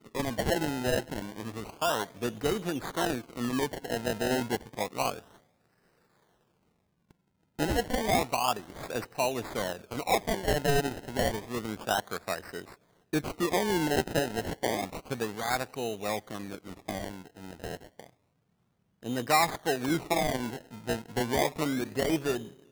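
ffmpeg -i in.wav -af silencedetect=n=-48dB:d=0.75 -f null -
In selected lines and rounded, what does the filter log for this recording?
silence_start: 5.37
silence_end: 7.11 | silence_duration: 1.74
silence_start: 18.09
silence_end: 19.03 | silence_duration: 0.94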